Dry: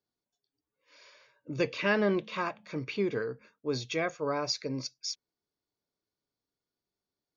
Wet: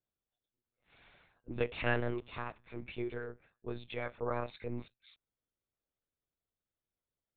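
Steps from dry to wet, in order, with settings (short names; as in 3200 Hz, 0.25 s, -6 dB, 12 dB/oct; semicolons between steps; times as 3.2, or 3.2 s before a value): 1.99–4.15 resonator 280 Hz, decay 0.5 s, harmonics all, mix 40%; monotone LPC vocoder at 8 kHz 120 Hz; gain -4 dB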